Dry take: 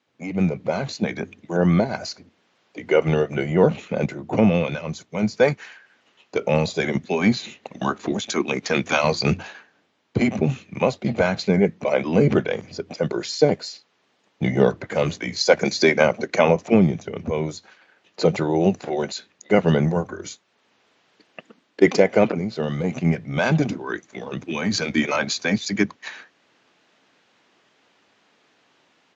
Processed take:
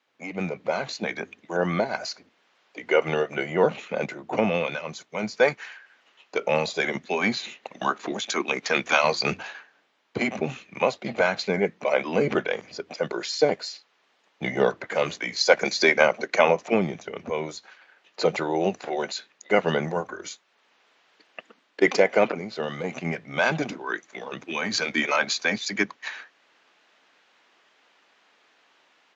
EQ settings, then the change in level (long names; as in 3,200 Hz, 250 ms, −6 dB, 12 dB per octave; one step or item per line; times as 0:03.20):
high-pass filter 1,000 Hz 6 dB per octave
high-shelf EQ 3,600 Hz −7.5 dB
+4.0 dB